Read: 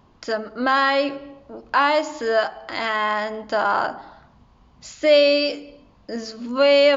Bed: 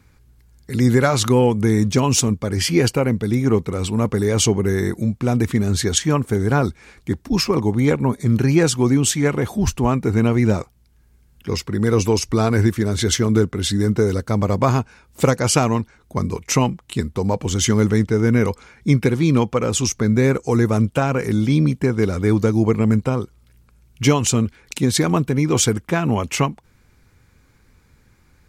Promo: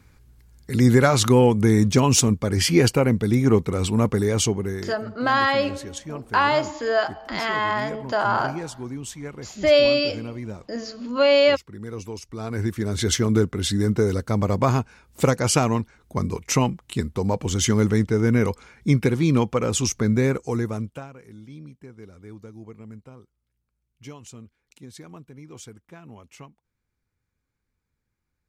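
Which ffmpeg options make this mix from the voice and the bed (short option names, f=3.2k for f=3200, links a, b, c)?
-filter_complex "[0:a]adelay=4600,volume=-1.5dB[a];[1:a]volume=13.5dB,afade=t=out:st=4:d=0.97:silence=0.149624,afade=t=in:st=12.35:d=0.76:silence=0.199526,afade=t=out:st=20.08:d=1.04:silence=0.0794328[b];[a][b]amix=inputs=2:normalize=0"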